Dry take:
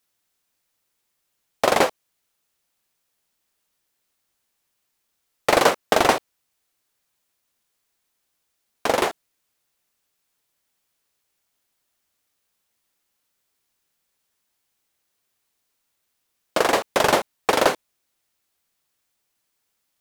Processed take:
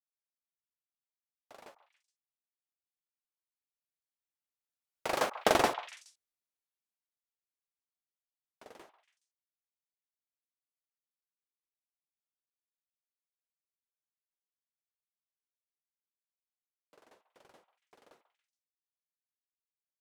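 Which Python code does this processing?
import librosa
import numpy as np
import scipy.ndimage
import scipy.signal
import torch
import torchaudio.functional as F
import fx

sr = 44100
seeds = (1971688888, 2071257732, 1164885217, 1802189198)

y = fx.doppler_pass(x, sr, speed_mps=27, closest_m=4.2, pass_at_s=5.49)
y = fx.echo_stepped(y, sr, ms=140, hz=1000.0, octaves=1.4, feedback_pct=70, wet_db=-10)
y = F.gain(torch.from_numpy(y), -7.5).numpy()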